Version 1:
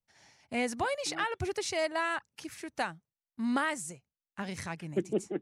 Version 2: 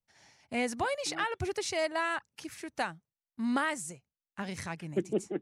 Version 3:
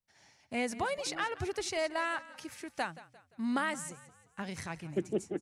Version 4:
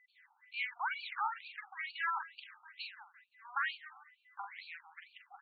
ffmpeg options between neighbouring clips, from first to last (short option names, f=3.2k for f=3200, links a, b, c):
-af anull
-filter_complex "[0:a]asplit=5[a][b][c][d][e];[b]adelay=174,afreqshift=-35,volume=-17.5dB[f];[c]adelay=348,afreqshift=-70,volume=-24.8dB[g];[d]adelay=522,afreqshift=-105,volume=-32.2dB[h];[e]adelay=696,afreqshift=-140,volume=-39.5dB[i];[a][f][g][h][i]amix=inputs=5:normalize=0,volume=-2dB"
-filter_complex "[0:a]aeval=exprs='val(0)+0.000501*sin(2*PI*2000*n/s)':c=same,asplit=2[a][b];[b]adelay=44,volume=-5dB[c];[a][c]amix=inputs=2:normalize=0,afftfilt=real='re*between(b*sr/1024,1000*pow(3300/1000,0.5+0.5*sin(2*PI*2.2*pts/sr))/1.41,1000*pow(3300/1000,0.5+0.5*sin(2*PI*2.2*pts/sr))*1.41)':imag='im*between(b*sr/1024,1000*pow(3300/1000,0.5+0.5*sin(2*PI*2.2*pts/sr))/1.41,1000*pow(3300/1000,0.5+0.5*sin(2*PI*2.2*pts/sr))*1.41)':win_size=1024:overlap=0.75,volume=1dB"